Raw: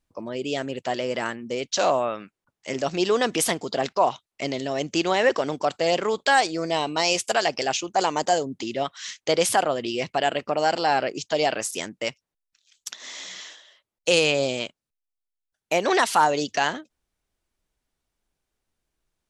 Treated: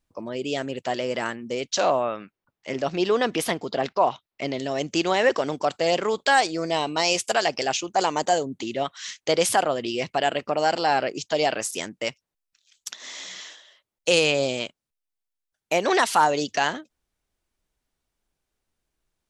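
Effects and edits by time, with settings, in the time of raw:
0:01.80–0:04.60: parametric band 7,900 Hz −10.5 dB 1.1 octaves
0:08.21–0:08.95: notch filter 5,100 Hz, Q 7.2

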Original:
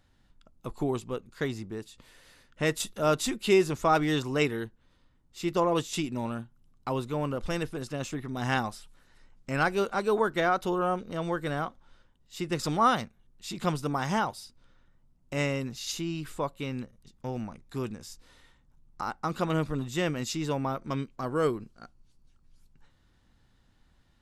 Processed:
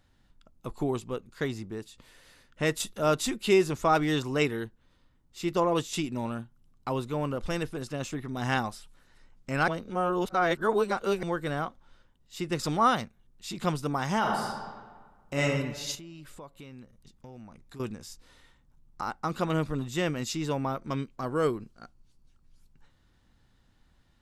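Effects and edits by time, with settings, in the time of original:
0:09.68–0:11.23: reverse
0:14.18–0:15.42: thrown reverb, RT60 1.5 s, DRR −2.5 dB
0:15.95–0:17.80: downward compressor 3 to 1, threshold −46 dBFS

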